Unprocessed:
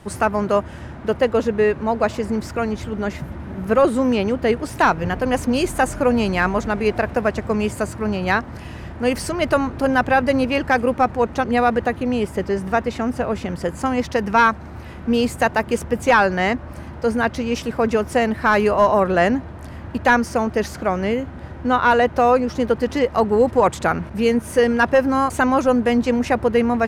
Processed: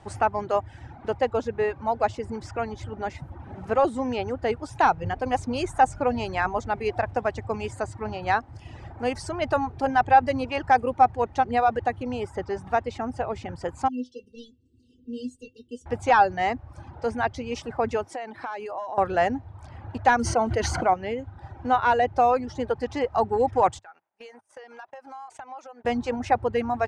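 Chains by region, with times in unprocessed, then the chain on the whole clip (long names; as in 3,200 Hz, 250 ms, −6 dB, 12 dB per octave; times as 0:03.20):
0:13.88–0:15.86: linear-phase brick-wall band-stop 480–2,700 Hz + parametric band 650 Hz +8 dB 2.5 octaves + stiff-string resonator 250 Hz, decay 0.21 s, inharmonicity 0.002
0:18.04–0:18.98: high-pass filter 250 Hz + downward compressor 12 to 1, threshold −23 dBFS
0:20.19–0:20.94: EQ curve with evenly spaced ripples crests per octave 1.9, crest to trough 7 dB + floating-point word with a short mantissa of 4 bits + envelope flattener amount 70%
0:23.79–0:25.85: high-pass filter 590 Hz + noise gate −33 dBFS, range −25 dB + downward compressor 10 to 1, threshold −33 dBFS
whole clip: low-pass filter 8,400 Hz 24 dB per octave; reverb reduction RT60 0.78 s; thirty-one-band graphic EQ 100 Hz +9 dB, 200 Hz −8 dB, 800 Hz +11 dB; level −7.5 dB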